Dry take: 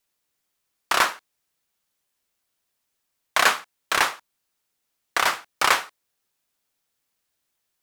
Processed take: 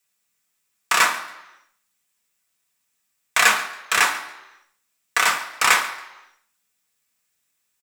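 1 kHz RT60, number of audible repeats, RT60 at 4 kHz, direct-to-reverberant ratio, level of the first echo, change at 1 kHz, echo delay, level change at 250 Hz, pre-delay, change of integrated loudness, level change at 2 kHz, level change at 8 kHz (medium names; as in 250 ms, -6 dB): 1.0 s, 1, 0.95 s, 2.0 dB, -18.0 dB, +1.5 dB, 139 ms, -0.5 dB, 3 ms, +3.0 dB, +4.5 dB, +6.0 dB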